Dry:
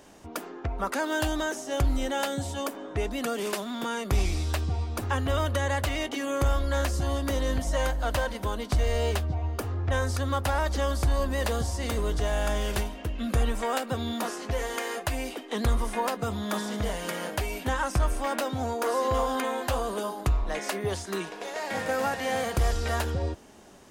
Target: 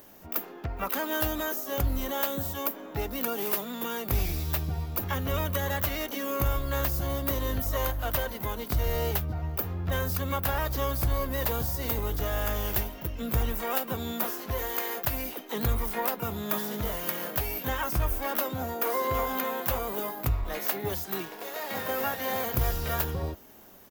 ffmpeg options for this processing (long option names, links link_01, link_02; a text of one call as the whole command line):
ffmpeg -i in.wav -filter_complex "[0:a]asplit=3[link_01][link_02][link_03];[link_02]asetrate=33038,aresample=44100,atempo=1.33484,volume=-14dB[link_04];[link_03]asetrate=88200,aresample=44100,atempo=0.5,volume=-9dB[link_05];[link_01][link_04][link_05]amix=inputs=3:normalize=0,aexciter=amount=7.6:drive=8:freq=12000,volume=-3.5dB" out.wav